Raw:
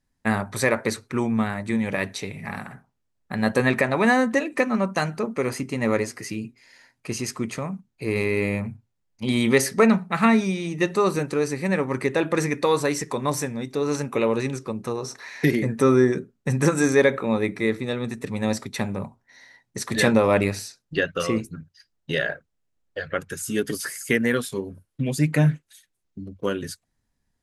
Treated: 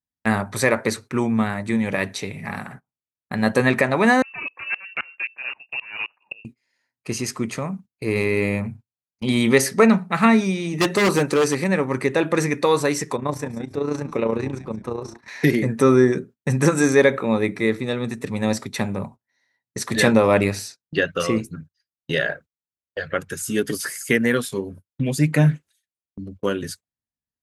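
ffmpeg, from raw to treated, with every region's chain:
ffmpeg -i in.wav -filter_complex "[0:a]asettb=1/sr,asplit=3[link_01][link_02][link_03];[link_01]atrim=end=4.224[link_04];[link_02]atrim=start=4.22:end=6.45,asetpts=PTS-STARTPTS,afade=type=in:duration=0.004:curve=qsin,afade=type=out:start_time=2.226:duration=0.004:curve=qsin,aeval=exprs='0.126*(abs(mod(val(0)/0.126+3,4)-2)-1)':channel_layout=same,lowpass=frequency=2500:width_type=q:width=0.5098,lowpass=frequency=2500:width_type=q:width=0.6013,lowpass=frequency=2500:width_type=q:width=0.9,lowpass=frequency=2500:width_type=q:width=2.563,afreqshift=-2900,aeval=exprs='val(0)*pow(10,-25*if(lt(mod(-3.8*n/s,1),2*abs(-3.8)/1000),1-mod(-3.8*n/s,1)/(2*abs(-3.8)/1000),(mod(-3.8*n/s,1)-2*abs(-3.8)/1000)/(1-2*abs(-3.8)/1000))/20)':channel_layout=same[link_05];[link_03]atrim=start=6.446[link_06];[link_04][link_05]acrossfade=duration=0.004:curve1=hsin:curve2=qsin[link_07];[link_07][link_06]acrossfade=duration=0.004:curve1=qsin:curve2=hsin,asettb=1/sr,asplit=3[link_08][link_09][link_10];[link_08]atrim=end=10.734[link_11];[link_09]atrim=start=10.73:end=11.64,asetpts=PTS-STARTPTS,afade=type=in:duration=0.004:curve=qsin,afade=type=out:start_time=0.906:duration=0.004:curve=qsin,lowshelf=frequency=120:gain=-9,acontrast=37,aeval=exprs='0.2*(abs(mod(val(0)/0.2+3,4)-2)-1)':channel_layout=same[link_12];[link_10]atrim=start=11.636[link_13];[link_11][link_12]acrossfade=duration=0.004:curve1=hsin:curve2=qsin[link_14];[link_14][link_13]acrossfade=duration=0.004:curve1=qsin:curve2=hsin,asettb=1/sr,asplit=3[link_15][link_16][link_17];[link_15]atrim=end=13.164[link_18];[link_16]atrim=start=13.16:end=15.28,asetpts=PTS-STARTPTS,afade=type=in:duration=0.004:curve=qsin,afade=type=out:start_time=2.116:duration=0.004:curve=qsin,highshelf=frequency=3100:gain=-11.5,tremolo=f=29:d=0.571,asplit=4[link_19][link_20][link_21][link_22];[link_20]adelay=174,afreqshift=-130,volume=-14.5dB[link_23];[link_21]adelay=348,afreqshift=-260,volume=-23.1dB[link_24];[link_22]adelay=522,afreqshift=-390,volume=-31.8dB[link_25];[link_19][link_23][link_24][link_25]amix=inputs=4:normalize=0,atrim=end_sample=93492[link_26];[link_17]atrim=start=15.276[link_27];[link_18][link_26]acrossfade=duration=0.004:curve1=hsin:curve2=qsin[link_28];[link_28][link_27]acrossfade=duration=0.004:curve1=qsin:curve2=hsin,highpass=57,agate=range=-22dB:threshold=-42dB:ratio=16:detection=peak,volume=2.5dB" out.wav

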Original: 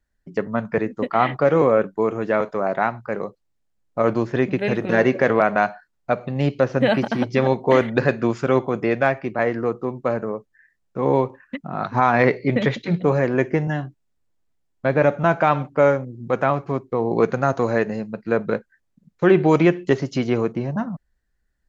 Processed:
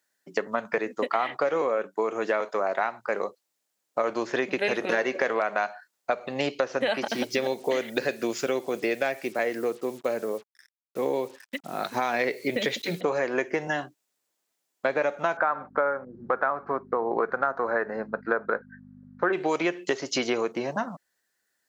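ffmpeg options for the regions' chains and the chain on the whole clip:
ffmpeg -i in.wav -filter_complex "[0:a]asettb=1/sr,asplit=3[link_01][link_02][link_03];[link_01]atrim=end=7.084[link_04];[link_02]atrim=start=7.08:end=13.01,asetpts=PTS-STARTPTS,afade=type=in:duration=0.004:curve=qsin,afade=type=out:start_time=5.926:duration=0.004:curve=qsin,equalizer=frequency=1100:width_type=o:width=1.3:gain=-11.5,acrusher=bits=8:mix=0:aa=0.5[link_05];[link_03]atrim=start=13.006[link_06];[link_04][link_05]acrossfade=duration=0.004:curve1=hsin:curve2=qsin[link_07];[link_07][link_06]acrossfade=duration=0.004:curve1=qsin:curve2=hsin,asettb=1/sr,asplit=3[link_08][link_09][link_10];[link_08]atrim=end=15.374[link_11];[link_09]atrim=start=15.37:end=19.33,asetpts=PTS-STARTPTS,afade=type=in:duration=0.004:curve=qsin,afade=type=out:start_time=3.956:duration=0.004:curve=qsin,lowpass=frequency=4500:width=0.5412,lowpass=frequency=4500:width=1.3066,highshelf=frequency=2100:width_type=q:width=3:gain=-11.5,aeval=exprs='val(0)+0.0316*(sin(2*PI*50*n/s)+sin(2*PI*2*50*n/s)/2+sin(2*PI*3*50*n/s)/3+sin(2*PI*4*50*n/s)/4+sin(2*PI*5*50*n/s)/5)':channel_layout=same[link_12];[link_10]atrim=start=19.326[link_13];[link_11][link_12]acrossfade=duration=0.004:curve1=hsin:curve2=qsin[link_14];[link_14][link_13]acrossfade=duration=0.004:curve1=qsin:curve2=hsin,highpass=420,acompressor=threshold=-26dB:ratio=6,highshelf=frequency=4000:gain=10.5,volume=3dB" out.wav

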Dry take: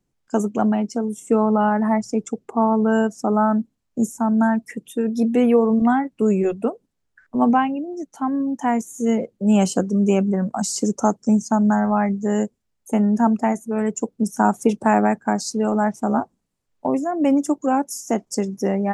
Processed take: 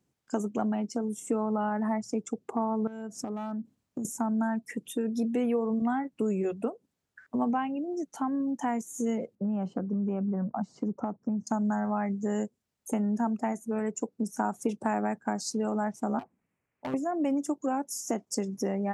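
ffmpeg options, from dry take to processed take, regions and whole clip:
ffmpeg -i in.wav -filter_complex "[0:a]asettb=1/sr,asplit=3[link_01][link_02][link_03];[link_01]atrim=end=2.874[link_04];[link_02]atrim=start=2.87:end=4.05,asetpts=PTS-STARTPTS,afade=type=in:duration=0.004:curve=qsin,afade=type=out:start_time=1.176:duration=0.004:curve=qsin,asoftclip=type=hard:threshold=-11dB,lowshelf=frequency=480:gain=5,acompressor=threshold=-29dB:ratio=16:attack=3.2:release=140:knee=1:detection=peak[link_05];[link_03]atrim=start=4.046[link_06];[link_04][link_05]acrossfade=duration=0.004:curve1=hsin:curve2=qsin[link_07];[link_07][link_06]acrossfade=duration=0.004:curve1=qsin:curve2=hsin,asettb=1/sr,asplit=3[link_08][link_09][link_10];[link_08]atrim=end=9.354[link_11];[link_09]atrim=start=9.35:end=11.47,asetpts=PTS-STARTPTS,afade=type=in:duration=0.004:curve=qsin,afade=type=out:start_time=2.116:duration=0.004:curve=qsin,lowpass=1100,equalizer=frequency=430:width_type=o:width=1.1:gain=-4.5,acompressor=threshold=-18dB:ratio=6:attack=3.2:release=140:knee=1:detection=peak[link_12];[link_10]atrim=start=11.466[link_13];[link_11][link_12]acrossfade=duration=0.004:curve1=hsin:curve2=qsin[link_14];[link_14][link_13]acrossfade=duration=0.004:curve1=qsin:curve2=hsin,asettb=1/sr,asplit=3[link_15][link_16][link_17];[link_15]atrim=end=13.794[link_18];[link_16]atrim=start=13.79:end=14.52,asetpts=PTS-STARTPTS,afade=type=in:duration=0.004:curve=qsin,afade=type=out:start_time=0.726:duration=0.004:curve=qsin,bass=frequency=250:gain=-3,treble=frequency=4000:gain=-3,bandreject=frequency=3200:width=7.4[link_19];[link_17]atrim=start=14.516[link_20];[link_18][link_19]acrossfade=duration=0.004:curve1=hsin:curve2=qsin[link_21];[link_21][link_20]acrossfade=duration=0.004:curve1=qsin:curve2=hsin,asettb=1/sr,asplit=3[link_22][link_23][link_24];[link_22]atrim=end=16.194[link_25];[link_23]atrim=start=16.19:end=16.94,asetpts=PTS-STARTPTS,afade=type=in:duration=0.004:curve=qsin,afade=type=out:start_time=0.746:duration=0.004:curve=qsin,highshelf=frequency=3000:width_type=q:width=3:gain=-9,acompressor=threshold=-25dB:ratio=4:attack=3.2:release=140:knee=1:detection=peak,asoftclip=type=hard:threshold=-30dB[link_26];[link_24]atrim=start=16.936[link_27];[link_25][link_26]acrossfade=duration=0.004:curve1=hsin:curve2=qsin[link_28];[link_28][link_27]acrossfade=duration=0.004:curve1=qsin:curve2=hsin,acompressor=threshold=-31dB:ratio=2.5,highpass=83" out.wav

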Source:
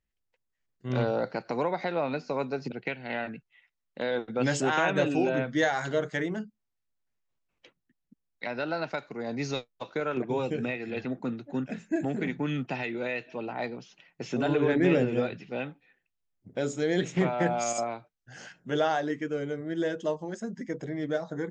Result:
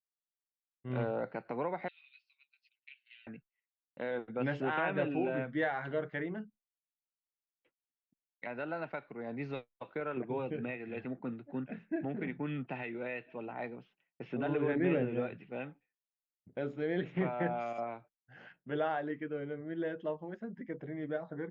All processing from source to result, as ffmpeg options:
ffmpeg -i in.wav -filter_complex "[0:a]asettb=1/sr,asplit=3[link_01][link_02][link_03];[link_01]atrim=end=1.884[link_04];[link_02]atrim=start=1.88:end=3.27,asetpts=PTS-STARTPTS,afade=type=in:duration=0.004:curve=qsin,afade=type=out:start_time=1.386:duration=0.004:curve=qsin,asuperpass=centerf=4900:order=8:qfactor=0.92,aecho=1:1:7.2:0.69,atrim=end_sample=61299[link_05];[link_03]atrim=start=3.266[link_06];[link_04][link_05]acrossfade=duration=0.004:curve1=hsin:curve2=qsin[link_07];[link_07][link_06]acrossfade=duration=0.004:curve1=qsin:curve2=hsin,agate=range=-33dB:threshold=-46dB:ratio=3:detection=peak,lowpass=frequency=2800:width=0.5412,lowpass=frequency=2800:width=1.3066,volume=-7dB" out.wav

